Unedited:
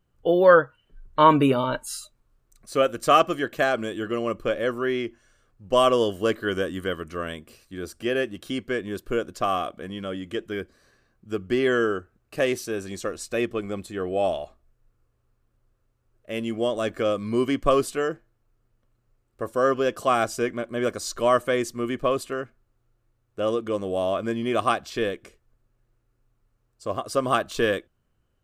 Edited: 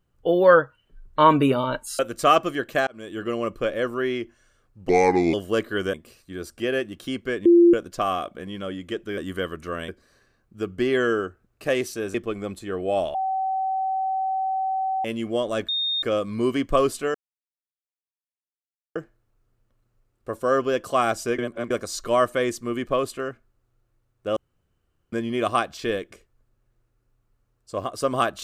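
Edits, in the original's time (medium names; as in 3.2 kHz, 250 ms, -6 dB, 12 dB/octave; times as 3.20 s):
1.99–2.83 s: delete
3.71–4.09 s: fade in
5.73–6.05 s: speed 72%
6.65–7.36 s: move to 10.60 s
8.88–9.16 s: bleep 344 Hz -10 dBFS
12.86–13.42 s: delete
14.42–16.32 s: bleep 764 Hz -22 dBFS
16.96 s: add tone 3.68 kHz -22 dBFS 0.34 s
18.08 s: insert silence 1.81 s
20.51–20.83 s: reverse
23.49–24.25 s: room tone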